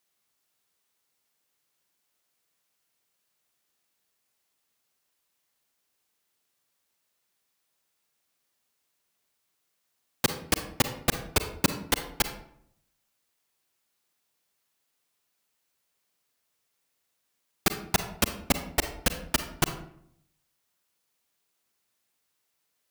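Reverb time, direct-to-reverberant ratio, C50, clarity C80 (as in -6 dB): 0.65 s, 8.0 dB, 9.5 dB, 13.0 dB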